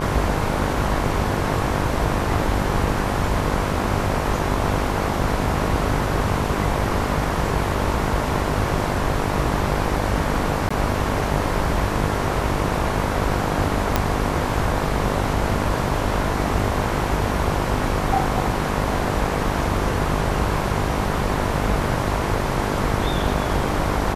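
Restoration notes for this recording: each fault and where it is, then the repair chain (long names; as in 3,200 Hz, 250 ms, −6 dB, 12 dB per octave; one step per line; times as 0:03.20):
mains buzz 50 Hz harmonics 22 −26 dBFS
0:10.69–0:10.71: drop-out 15 ms
0:13.96: click −3 dBFS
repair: click removal
hum removal 50 Hz, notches 22
repair the gap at 0:10.69, 15 ms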